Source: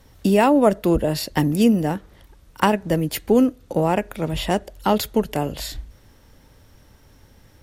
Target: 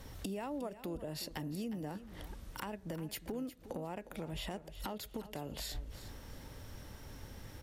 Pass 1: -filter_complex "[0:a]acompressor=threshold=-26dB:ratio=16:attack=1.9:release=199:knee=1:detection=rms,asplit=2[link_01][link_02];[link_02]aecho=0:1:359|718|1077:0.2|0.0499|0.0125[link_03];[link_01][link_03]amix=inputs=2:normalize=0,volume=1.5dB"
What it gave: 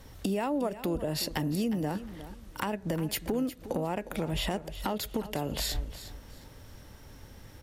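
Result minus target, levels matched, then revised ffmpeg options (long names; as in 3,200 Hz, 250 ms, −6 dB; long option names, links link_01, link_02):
downward compressor: peak gain reduction −10.5 dB
-filter_complex "[0:a]acompressor=threshold=-37dB:ratio=16:attack=1.9:release=199:knee=1:detection=rms,asplit=2[link_01][link_02];[link_02]aecho=0:1:359|718|1077:0.2|0.0499|0.0125[link_03];[link_01][link_03]amix=inputs=2:normalize=0,volume=1.5dB"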